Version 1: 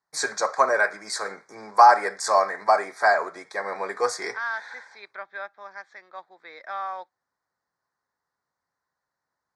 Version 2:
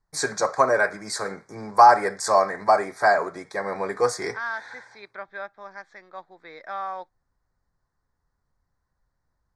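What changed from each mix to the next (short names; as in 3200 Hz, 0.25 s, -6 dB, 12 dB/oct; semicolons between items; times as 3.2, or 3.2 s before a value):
master: remove weighting filter A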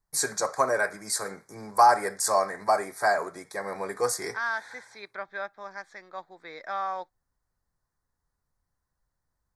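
first voice -5.5 dB; master: remove air absorption 91 m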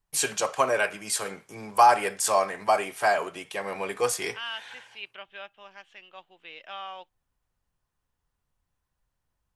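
second voice -9.0 dB; master: remove Chebyshev band-stop 1900–4300 Hz, order 2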